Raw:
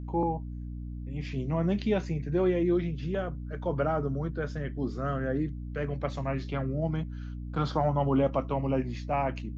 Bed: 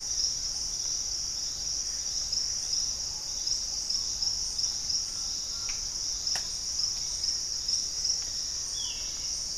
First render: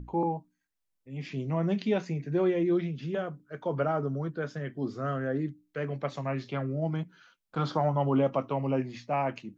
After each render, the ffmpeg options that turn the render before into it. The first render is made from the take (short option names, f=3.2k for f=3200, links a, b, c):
-af "bandreject=f=60:t=h:w=6,bandreject=f=120:t=h:w=6,bandreject=f=180:t=h:w=6,bandreject=f=240:t=h:w=6,bandreject=f=300:t=h:w=6"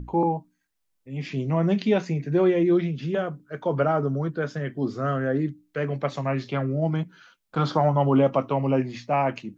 -af "volume=6dB"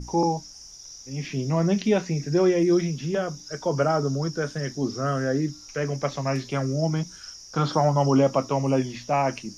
-filter_complex "[1:a]volume=-12dB[a];[0:a][a]amix=inputs=2:normalize=0"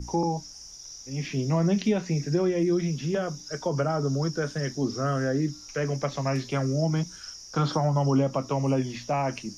-filter_complex "[0:a]acrossover=split=220[a][b];[b]acompressor=threshold=-24dB:ratio=6[c];[a][c]amix=inputs=2:normalize=0"